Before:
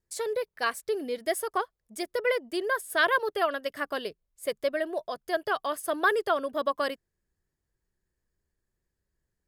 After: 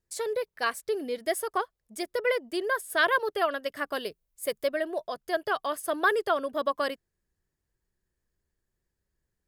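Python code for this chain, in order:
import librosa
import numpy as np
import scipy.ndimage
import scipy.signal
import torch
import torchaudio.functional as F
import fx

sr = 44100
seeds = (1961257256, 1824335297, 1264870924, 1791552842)

y = fx.high_shelf(x, sr, hz=9700.0, db=10.0, at=(3.93, 4.68))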